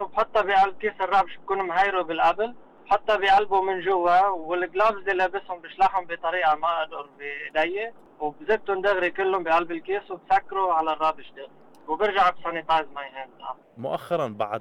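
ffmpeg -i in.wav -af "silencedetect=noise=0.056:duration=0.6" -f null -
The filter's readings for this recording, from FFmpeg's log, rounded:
silence_start: 11.11
silence_end: 11.90 | silence_duration: 0.79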